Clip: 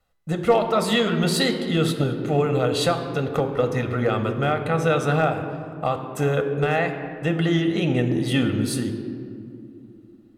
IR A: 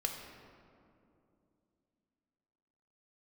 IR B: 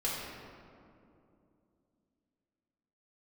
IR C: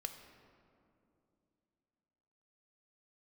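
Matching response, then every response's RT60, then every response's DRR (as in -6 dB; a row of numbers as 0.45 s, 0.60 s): C; 2.7 s, 2.7 s, 2.7 s; 2.0 dB, -7.0 dB, 6.0 dB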